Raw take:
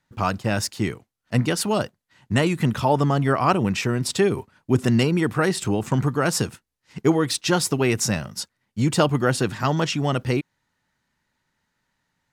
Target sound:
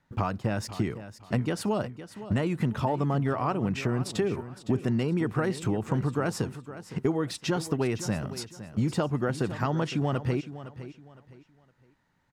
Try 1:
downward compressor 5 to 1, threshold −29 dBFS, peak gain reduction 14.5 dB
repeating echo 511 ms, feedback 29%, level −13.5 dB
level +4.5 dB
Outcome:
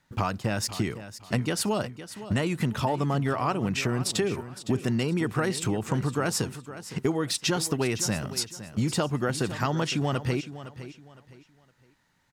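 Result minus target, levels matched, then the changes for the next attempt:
4,000 Hz band +6.5 dB
add after downward compressor: high-shelf EQ 2,400 Hz −11 dB

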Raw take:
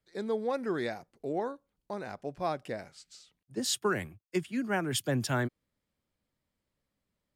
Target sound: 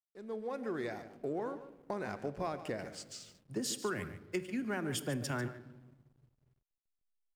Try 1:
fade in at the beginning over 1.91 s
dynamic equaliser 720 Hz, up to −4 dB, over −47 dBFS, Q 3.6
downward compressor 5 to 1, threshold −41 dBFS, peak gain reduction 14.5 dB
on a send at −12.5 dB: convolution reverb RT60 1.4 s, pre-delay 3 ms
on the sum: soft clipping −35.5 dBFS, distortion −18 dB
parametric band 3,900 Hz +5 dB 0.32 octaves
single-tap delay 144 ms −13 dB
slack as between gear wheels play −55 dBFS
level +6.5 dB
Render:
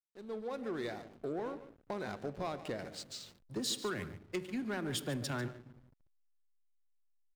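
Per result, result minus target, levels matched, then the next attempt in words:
soft clipping: distortion +10 dB; slack as between gear wheels: distortion +10 dB; 4,000 Hz band +4.0 dB
fade in at the beginning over 1.91 s
dynamic equaliser 720 Hz, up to −4 dB, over −47 dBFS, Q 3.6
downward compressor 5 to 1, threshold −41 dBFS, peak gain reduction 14.5 dB
on a send at −12.5 dB: convolution reverb RT60 1.4 s, pre-delay 3 ms
on the sum: soft clipping −29 dBFS, distortion −29 dB
parametric band 3,900 Hz +5 dB 0.32 octaves
single-tap delay 144 ms −13 dB
slack as between gear wheels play −55 dBFS
level +6.5 dB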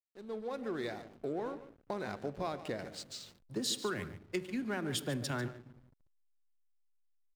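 slack as between gear wheels: distortion +9 dB; 4,000 Hz band +4.5 dB
fade in at the beginning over 1.91 s
dynamic equaliser 720 Hz, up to −4 dB, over −47 dBFS, Q 3.6
downward compressor 5 to 1, threshold −41 dBFS, peak gain reduction 14.5 dB
on a send at −12.5 dB: convolution reverb RT60 1.4 s, pre-delay 3 ms
on the sum: soft clipping −29 dBFS, distortion −29 dB
parametric band 3,900 Hz +5 dB 0.32 octaves
single-tap delay 144 ms −13 dB
slack as between gear wheels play −65.5 dBFS
level +6.5 dB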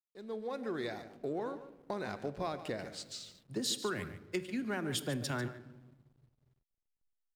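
4,000 Hz band +4.5 dB
fade in at the beginning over 1.91 s
dynamic equaliser 720 Hz, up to −4 dB, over −47 dBFS, Q 3.6
downward compressor 5 to 1, threshold −41 dBFS, peak gain reduction 14.5 dB
on a send at −12.5 dB: convolution reverb RT60 1.4 s, pre-delay 3 ms
on the sum: soft clipping −29 dBFS, distortion −29 dB
parametric band 3,900 Hz −7 dB 0.32 octaves
single-tap delay 144 ms −13 dB
slack as between gear wheels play −65.5 dBFS
level +6.5 dB

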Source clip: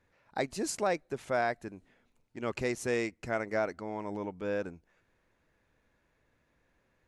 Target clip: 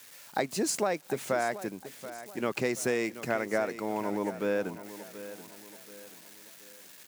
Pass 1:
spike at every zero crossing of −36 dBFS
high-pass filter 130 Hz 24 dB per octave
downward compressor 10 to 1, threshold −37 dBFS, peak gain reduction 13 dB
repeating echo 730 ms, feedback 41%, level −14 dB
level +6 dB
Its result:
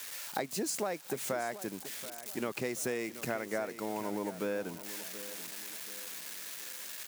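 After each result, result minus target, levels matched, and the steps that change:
downward compressor: peak gain reduction +6.5 dB; spike at every zero crossing: distortion +8 dB
change: downward compressor 10 to 1, threshold −30 dBFS, peak gain reduction 6.5 dB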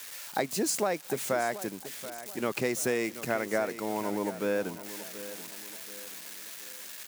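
spike at every zero crossing: distortion +8 dB
change: spike at every zero crossing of −44.5 dBFS

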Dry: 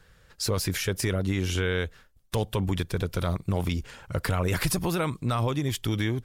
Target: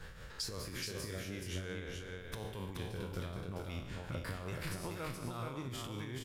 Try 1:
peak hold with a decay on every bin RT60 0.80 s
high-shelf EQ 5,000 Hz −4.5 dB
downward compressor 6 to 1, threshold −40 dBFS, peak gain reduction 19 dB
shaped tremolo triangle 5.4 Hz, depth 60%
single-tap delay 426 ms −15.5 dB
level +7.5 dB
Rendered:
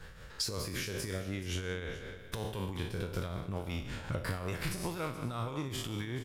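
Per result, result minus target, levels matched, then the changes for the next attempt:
echo-to-direct −11.5 dB; downward compressor: peak gain reduction −6 dB
change: single-tap delay 426 ms −4 dB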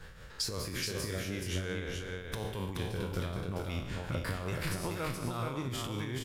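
downward compressor: peak gain reduction −6 dB
change: downward compressor 6 to 1, threshold −47 dBFS, peak gain reduction 24.5 dB

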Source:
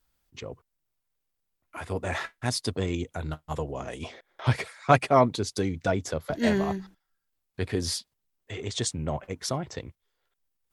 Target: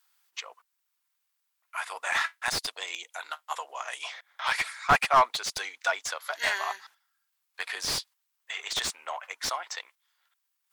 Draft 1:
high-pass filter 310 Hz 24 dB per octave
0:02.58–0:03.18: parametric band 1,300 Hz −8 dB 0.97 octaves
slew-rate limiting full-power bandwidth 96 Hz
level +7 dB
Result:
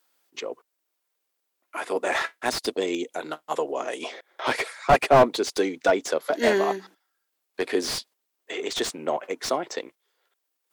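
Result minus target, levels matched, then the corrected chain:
250 Hz band +14.5 dB
high-pass filter 930 Hz 24 dB per octave
0:02.58–0:03.18: parametric band 1,300 Hz −8 dB 0.97 octaves
slew-rate limiting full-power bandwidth 96 Hz
level +7 dB

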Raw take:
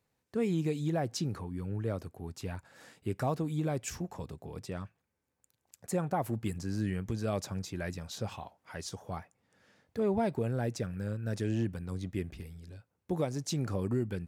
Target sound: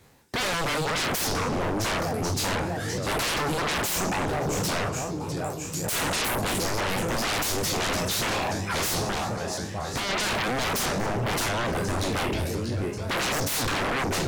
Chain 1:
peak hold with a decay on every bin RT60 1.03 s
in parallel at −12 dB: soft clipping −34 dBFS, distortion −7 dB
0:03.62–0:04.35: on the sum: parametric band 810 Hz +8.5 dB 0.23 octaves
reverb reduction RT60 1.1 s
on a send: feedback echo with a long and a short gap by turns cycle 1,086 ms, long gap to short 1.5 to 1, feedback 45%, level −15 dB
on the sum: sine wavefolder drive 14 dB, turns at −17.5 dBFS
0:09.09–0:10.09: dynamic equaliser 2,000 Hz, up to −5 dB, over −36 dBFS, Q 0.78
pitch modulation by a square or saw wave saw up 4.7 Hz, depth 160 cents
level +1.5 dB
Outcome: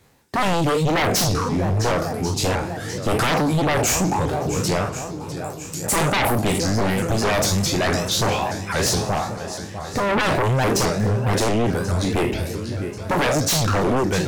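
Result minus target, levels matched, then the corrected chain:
sine wavefolder: distortion −13 dB
peak hold with a decay on every bin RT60 1.03 s
in parallel at −12 dB: soft clipping −34 dBFS, distortion −7 dB
0:03.62–0:04.35: on the sum: parametric band 810 Hz +8.5 dB 0.23 octaves
reverb reduction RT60 1.1 s
on a send: feedback echo with a long and a short gap by turns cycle 1,086 ms, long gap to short 1.5 to 1, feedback 45%, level −15 dB
on the sum: sine wavefolder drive 14 dB, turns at −25 dBFS
0:09.09–0:10.09: dynamic equaliser 2,000 Hz, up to −5 dB, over −36 dBFS, Q 0.78
pitch modulation by a square or saw wave saw up 4.7 Hz, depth 160 cents
level +1.5 dB

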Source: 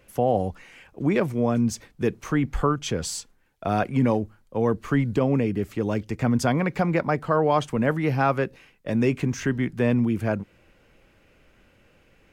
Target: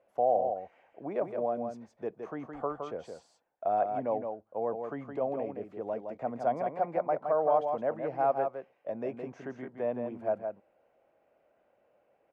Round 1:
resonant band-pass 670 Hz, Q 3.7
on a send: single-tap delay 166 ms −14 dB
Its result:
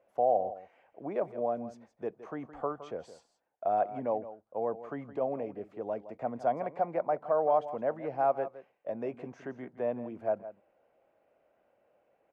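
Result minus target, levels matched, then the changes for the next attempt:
echo-to-direct −8 dB
change: single-tap delay 166 ms −6 dB

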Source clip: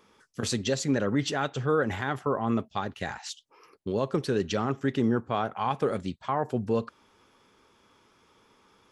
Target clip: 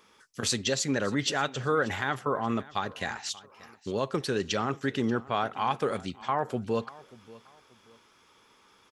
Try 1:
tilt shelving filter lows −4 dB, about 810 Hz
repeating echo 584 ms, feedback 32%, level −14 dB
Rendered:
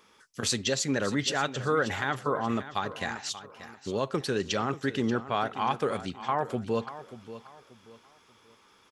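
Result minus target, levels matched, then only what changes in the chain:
echo-to-direct +6.5 dB
change: repeating echo 584 ms, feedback 32%, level −20.5 dB

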